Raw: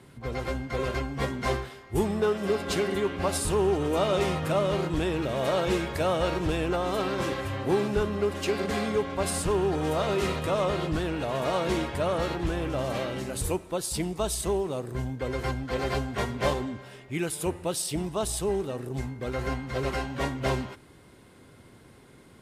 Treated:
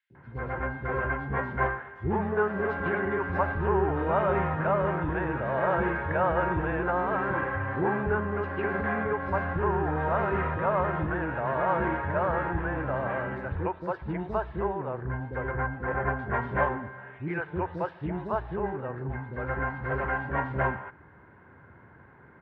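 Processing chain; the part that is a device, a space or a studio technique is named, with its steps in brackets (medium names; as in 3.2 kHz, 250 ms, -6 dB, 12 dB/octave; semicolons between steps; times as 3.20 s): 15.36–16.19 s: low-pass 2.2 kHz 12 dB/octave; bass cabinet (cabinet simulation 64–2000 Hz, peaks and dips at 80 Hz +5 dB, 250 Hz -4 dB, 920 Hz +7 dB, 1.6 kHz +10 dB); three bands offset in time highs, lows, mids 100/150 ms, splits 400/3700 Hz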